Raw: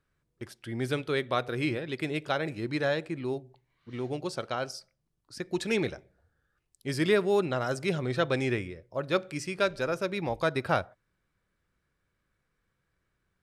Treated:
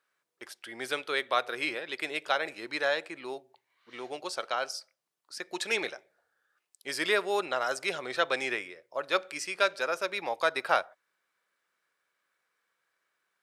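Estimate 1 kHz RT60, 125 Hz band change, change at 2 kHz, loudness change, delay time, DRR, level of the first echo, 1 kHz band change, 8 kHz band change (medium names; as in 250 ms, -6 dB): no reverb, -23.0 dB, +3.5 dB, -0.5 dB, no echo, no reverb, no echo, +2.5 dB, +3.5 dB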